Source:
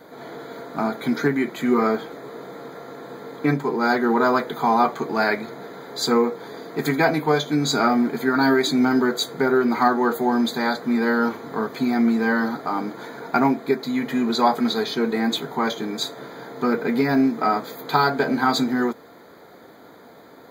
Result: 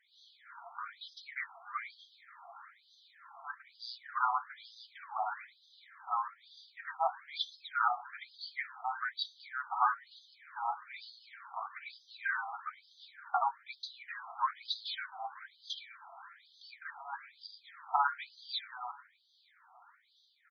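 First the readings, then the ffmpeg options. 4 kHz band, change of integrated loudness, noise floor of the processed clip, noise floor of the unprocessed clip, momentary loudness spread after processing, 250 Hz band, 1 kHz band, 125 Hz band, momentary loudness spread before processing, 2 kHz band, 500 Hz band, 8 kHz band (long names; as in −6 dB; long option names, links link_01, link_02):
−13.0 dB, −16.5 dB, −69 dBFS, −47 dBFS, 21 LU, below −40 dB, −12.0 dB, below −40 dB, 17 LU, −14.0 dB, −29.0 dB, below −25 dB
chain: -filter_complex "[0:a]acrossover=split=770[link_01][link_02];[link_01]aeval=exprs='val(0)*(1-0.5/2+0.5/2*cos(2*PI*2.5*n/s))':channel_layout=same[link_03];[link_02]aeval=exprs='val(0)*(1-0.5/2-0.5/2*cos(2*PI*2.5*n/s))':channel_layout=same[link_04];[link_03][link_04]amix=inputs=2:normalize=0,flanger=delay=2.6:depth=5.1:regen=-34:speed=1.2:shape=sinusoidal,asplit=2[link_05][link_06];[link_06]adelay=932.9,volume=-23dB,highshelf=frequency=4000:gain=-21[link_07];[link_05][link_07]amix=inputs=2:normalize=0,afftfilt=real='re*between(b*sr/1024,950*pow(4500/950,0.5+0.5*sin(2*PI*1.1*pts/sr))/1.41,950*pow(4500/950,0.5+0.5*sin(2*PI*1.1*pts/sr))*1.41)':imag='im*between(b*sr/1024,950*pow(4500/950,0.5+0.5*sin(2*PI*1.1*pts/sr))/1.41,950*pow(4500/950,0.5+0.5*sin(2*PI*1.1*pts/sr))*1.41)':win_size=1024:overlap=0.75,volume=-1.5dB"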